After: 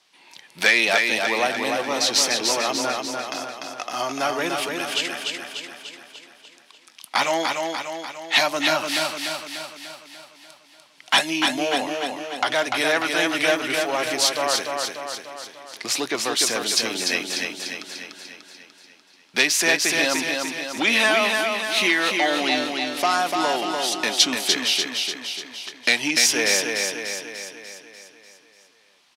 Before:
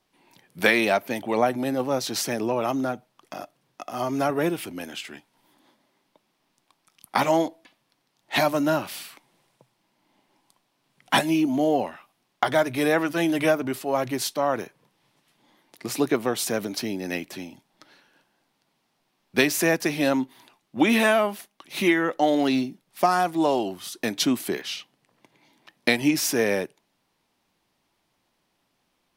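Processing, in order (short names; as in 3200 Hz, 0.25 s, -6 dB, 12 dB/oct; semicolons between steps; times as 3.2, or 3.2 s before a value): in parallel at +0.5 dB: compressor, threshold -36 dBFS, peak gain reduction 20 dB; on the sum: soft clip -12 dBFS, distortion -18 dB; LPF 5100 Hz 12 dB/oct; tilt +4.5 dB/oct; feedback echo 0.295 s, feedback 56%, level -4 dB; gain +1 dB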